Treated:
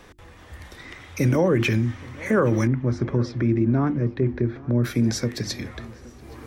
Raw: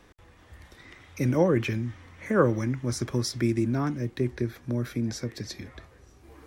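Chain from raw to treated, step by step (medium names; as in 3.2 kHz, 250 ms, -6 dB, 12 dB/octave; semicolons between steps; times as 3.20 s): hum notches 50/100/150/200/250/300/350 Hz; peak limiter -19.5 dBFS, peak gain reduction 10 dB; 2.67–4.84 s: tape spacing loss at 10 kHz 36 dB; filtered feedback delay 821 ms, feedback 48%, low-pass 2.3 kHz, level -21 dB; trim +8.5 dB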